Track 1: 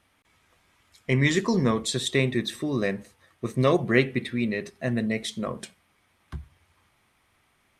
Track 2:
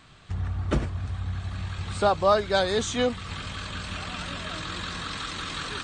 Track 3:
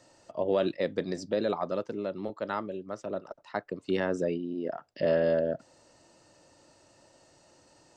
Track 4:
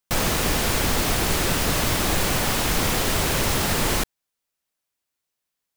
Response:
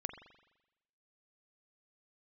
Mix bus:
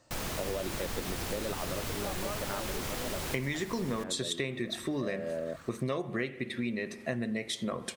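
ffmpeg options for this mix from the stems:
-filter_complex "[0:a]lowshelf=f=170:g=-6,adelay=2250,volume=0dB,asplit=2[a][b];[b]volume=-5dB[c];[1:a]equalizer=f=3.3k:t=o:w=0.92:g=-13.5,acrusher=bits=3:mode=log:mix=0:aa=0.000001,volume=-17.5dB[d];[2:a]volume=-5dB[e];[3:a]volume=-17dB,asplit=2[f][g];[g]volume=-3dB[h];[4:a]atrim=start_sample=2205[i];[c][h]amix=inputs=2:normalize=0[j];[j][i]afir=irnorm=-1:irlink=0[k];[a][d][e][f][k]amix=inputs=5:normalize=0,acompressor=threshold=-30dB:ratio=8"

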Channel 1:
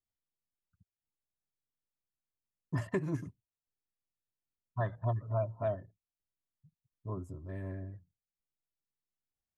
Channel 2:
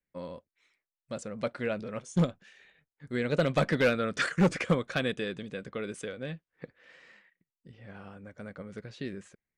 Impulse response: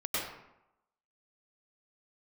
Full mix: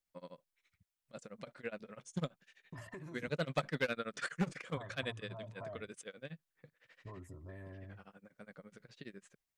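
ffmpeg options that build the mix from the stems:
-filter_complex "[0:a]alimiter=level_in=8.5dB:limit=-24dB:level=0:latency=1:release=39,volume=-8.5dB,acompressor=threshold=-42dB:ratio=6,volume=3dB[a];[1:a]lowshelf=f=110:t=q:w=3:g=-8,tremolo=f=12:d=0.96,volume=-4dB[b];[a][b]amix=inputs=2:normalize=0,equalizer=f=150:w=0.31:g=-8"

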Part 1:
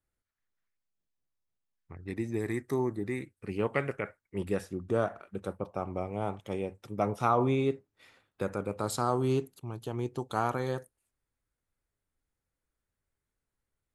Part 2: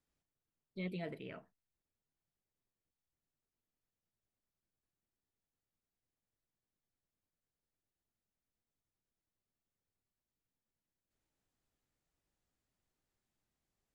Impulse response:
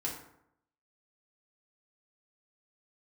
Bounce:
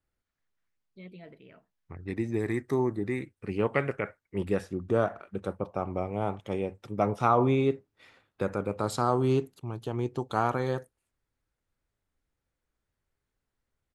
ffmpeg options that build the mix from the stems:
-filter_complex "[0:a]volume=3dB[a];[1:a]adelay=200,volume=-5.5dB[b];[a][b]amix=inputs=2:normalize=0,highshelf=f=8.4k:g=-12"

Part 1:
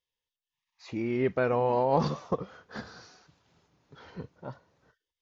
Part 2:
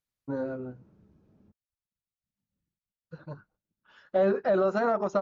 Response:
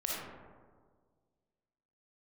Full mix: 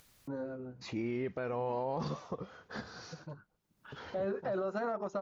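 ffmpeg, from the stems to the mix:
-filter_complex "[0:a]agate=range=-30dB:threshold=-58dB:ratio=16:detection=peak,volume=-3dB[a];[1:a]volume=-7.5dB[b];[a][b]amix=inputs=2:normalize=0,acompressor=mode=upward:threshold=-39dB:ratio=2.5,alimiter=level_in=3dB:limit=-24dB:level=0:latency=1:release=101,volume=-3dB"

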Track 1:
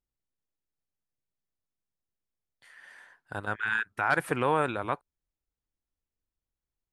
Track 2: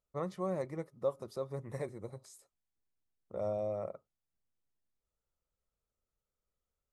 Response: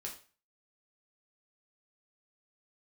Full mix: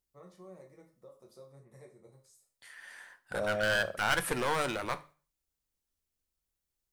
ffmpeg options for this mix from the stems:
-filter_complex "[0:a]aeval=exprs='clip(val(0),-1,0.0224)':c=same,volume=-2.5dB,asplit=3[a][b][c];[a]atrim=end=1.5,asetpts=PTS-STARTPTS,afade=t=out:st=1.496:d=0.004:c=hsin[d];[b]atrim=start=1.5:end=2.12,asetpts=PTS-STARTPTS,volume=0[e];[c]atrim=start=2.12,asetpts=PTS-STARTPTS,afade=t=in:d=0.004:c=hsin[f];[d][e][f]concat=n=3:v=0:a=1,asplit=3[g][h][i];[h]volume=-5dB[j];[1:a]alimiter=level_in=5dB:limit=-24dB:level=0:latency=1:release=175,volume=-5dB,volume=3dB,asplit=2[k][l];[l]volume=-16dB[m];[i]apad=whole_len=305304[n];[k][n]sidechaingate=range=-33dB:threshold=-59dB:ratio=16:detection=peak[o];[2:a]atrim=start_sample=2205[p];[j][m]amix=inputs=2:normalize=0[q];[q][p]afir=irnorm=-1:irlink=0[r];[g][o][r]amix=inputs=3:normalize=0,highshelf=f=3.7k:g=9,bandreject=f=50:t=h:w=6,bandreject=f=100:t=h:w=6,bandreject=f=150:t=h:w=6"

